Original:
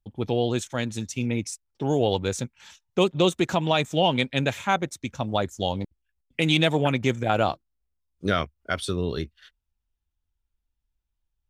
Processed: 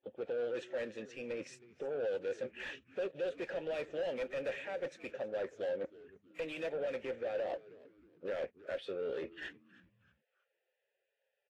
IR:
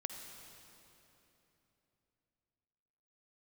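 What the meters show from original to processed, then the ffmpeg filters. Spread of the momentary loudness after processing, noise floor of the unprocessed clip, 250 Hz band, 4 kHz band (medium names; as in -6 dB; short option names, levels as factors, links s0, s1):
8 LU, -81 dBFS, -21.5 dB, -23.5 dB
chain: -filter_complex "[0:a]highshelf=f=4100:g=-5,alimiter=limit=0.126:level=0:latency=1:release=151,areverse,acompressor=threshold=0.00891:ratio=20,areverse,asplit=3[s0][s1][s2];[s0]bandpass=f=530:t=q:w=8,volume=1[s3];[s1]bandpass=f=1840:t=q:w=8,volume=0.501[s4];[s2]bandpass=f=2480:t=q:w=8,volume=0.355[s5];[s3][s4][s5]amix=inputs=3:normalize=0,asplit=2[s6][s7];[s7]highpass=f=720:p=1,volume=12.6,asoftclip=type=tanh:threshold=0.0075[s8];[s6][s8]amix=inputs=2:normalize=0,lowpass=f=1100:p=1,volume=0.501,asplit=2[s9][s10];[s10]asplit=3[s11][s12][s13];[s11]adelay=316,afreqshift=-110,volume=0.1[s14];[s12]adelay=632,afreqshift=-220,volume=0.038[s15];[s13]adelay=948,afreqshift=-330,volume=0.0145[s16];[s14][s15][s16]amix=inputs=3:normalize=0[s17];[s9][s17]amix=inputs=2:normalize=0,volume=5.31" -ar 44100 -c:a libvorbis -b:a 32k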